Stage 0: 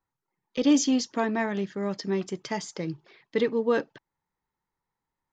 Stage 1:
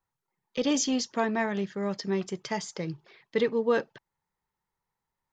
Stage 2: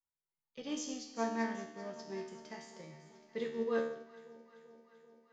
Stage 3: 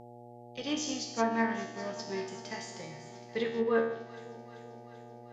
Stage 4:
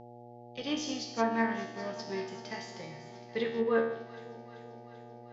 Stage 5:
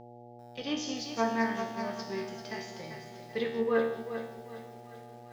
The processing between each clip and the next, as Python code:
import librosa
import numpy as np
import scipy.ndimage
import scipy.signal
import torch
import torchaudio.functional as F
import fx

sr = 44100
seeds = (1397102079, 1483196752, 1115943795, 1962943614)

y1 = fx.peak_eq(x, sr, hz=290.0, db=-7.5, octaves=0.38)
y2 = fx.comb_fb(y1, sr, f0_hz=76.0, decay_s=1.0, harmonics='all', damping=0.0, mix_pct=90)
y2 = fx.echo_alternate(y2, sr, ms=194, hz=920.0, feedback_pct=82, wet_db=-11.0)
y2 = fx.upward_expand(y2, sr, threshold_db=-48.0, expansion=1.5)
y2 = F.gain(torch.from_numpy(y2), 2.5).numpy()
y3 = fx.dmg_buzz(y2, sr, base_hz=120.0, harmonics=7, level_db=-56.0, tilt_db=-1, odd_only=False)
y3 = fx.env_lowpass_down(y3, sr, base_hz=2000.0, full_db=-30.5)
y3 = fx.tilt_shelf(y3, sr, db=-3.5, hz=1400.0)
y3 = F.gain(torch.from_numpy(y3), 8.5).numpy()
y4 = scipy.signal.sosfilt(scipy.signal.butter(4, 5700.0, 'lowpass', fs=sr, output='sos'), y3)
y5 = fx.echo_crushed(y4, sr, ms=393, feedback_pct=35, bits=9, wet_db=-9)